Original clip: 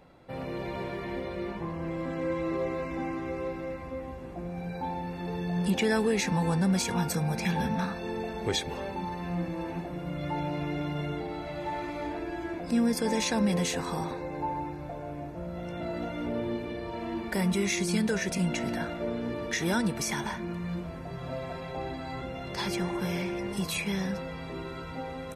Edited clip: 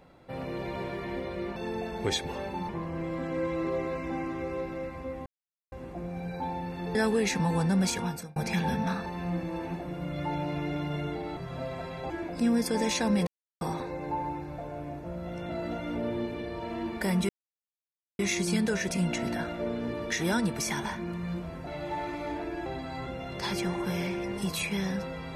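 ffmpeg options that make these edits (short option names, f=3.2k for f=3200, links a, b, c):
-filter_complex "[0:a]asplit=14[a][b][c][d][e][f][g][h][i][j][k][l][m][n];[a]atrim=end=1.562[o];[b]atrim=start=7.978:end=9.112[p];[c]atrim=start=1.558:end=4.13,asetpts=PTS-STARTPTS,afade=t=out:st=2.568:d=0.004:c=hsin,apad=pad_dur=0.46[q];[d]atrim=start=4.13:end=5.362,asetpts=PTS-STARTPTS,afade=t=in:d=0.004:c=hsin[r];[e]atrim=start=5.868:end=7.28,asetpts=PTS-STARTPTS,afade=t=out:st=0.962:d=0.45[s];[f]atrim=start=7.28:end=7.982,asetpts=PTS-STARTPTS,afade=t=in:d=0.004:c=hsin[t];[g]atrim=start=9.108:end=11.422[u];[h]atrim=start=21.078:end=21.812[v];[i]atrim=start=12.408:end=13.58,asetpts=PTS-STARTPTS,afade=t=out:st=1.168:d=0.004:c=hsin[w];[j]atrim=start=13.58:end=13.92,asetpts=PTS-STARTPTS,volume=0[x];[k]atrim=start=13.92:end=17.6,asetpts=PTS-STARTPTS,afade=t=in:d=0.004:c=hsin,afade=t=out:st=3.676:d=0.004:c=hsin,apad=pad_dur=0.9[y];[l]atrim=start=17.6:end=21.082,asetpts=PTS-STARTPTS,afade=t=in:d=0.004:c=hsin[z];[m]atrim=start=11.418:end=12.412[aa];[n]atrim=start=21.808[ab];[o][p]acrossfade=d=0.004:c1=hsin:c2=hsin[ac];[q][r]concat=n=2:v=0:a=1[ad];[ac][ad]acrossfade=d=0.004:c1=hsin:c2=hsin[ae];[s][t]concat=n=2:v=0:a=1[af];[ae][af]acrossfade=d=0.004:c1=hsin:c2=hsin[ag];[ag][u]acrossfade=d=0.004:c1=hsin:c2=hsin[ah];[ah][v]acrossfade=d=0.004:c1=hsin:c2=hsin[ai];[w][x][y][z]concat=n=4:v=0:a=1[aj];[ai][aj]acrossfade=d=0.004:c1=hsin:c2=hsin[ak];[ak][aa]acrossfade=d=0.004:c1=hsin:c2=hsin[al];[al][ab]acrossfade=d=0.004:c1=hsin:c2=hsin"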